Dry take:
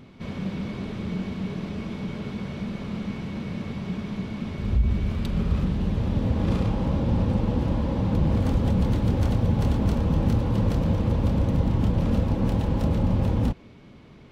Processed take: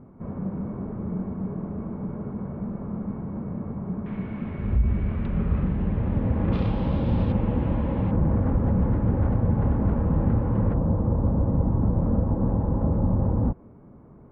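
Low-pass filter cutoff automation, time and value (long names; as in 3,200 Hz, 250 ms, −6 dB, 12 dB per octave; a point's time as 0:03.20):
low-pass filter 24 dB per octave
1,200 Hz
from 0:04.06 2,200 Hz
from 0:06.53 4,000 Hz
from 0:07.32 2,600 Hz
from 0:08.11 1,700 Hz
from 0:10.74 1,200 Hz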